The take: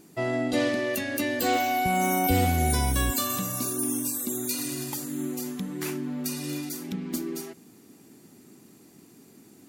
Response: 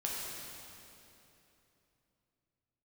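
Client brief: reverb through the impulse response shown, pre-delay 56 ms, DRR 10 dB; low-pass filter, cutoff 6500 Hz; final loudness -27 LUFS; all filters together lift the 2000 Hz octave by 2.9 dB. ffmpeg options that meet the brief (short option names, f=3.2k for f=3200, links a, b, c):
-filter_complex "[0:a]lowpass=6.5k,equalizer=f=2k:t=o:g=3.5,asplit=2[a][b];[1:a]atrim=start_sample=2205,adelay=56[c];[b][c]afir=irnorm=-1:irlink=0,volume=-13.5dB[d];[a][d]amix=inputs=2:normalize=0,volume=0.5dB"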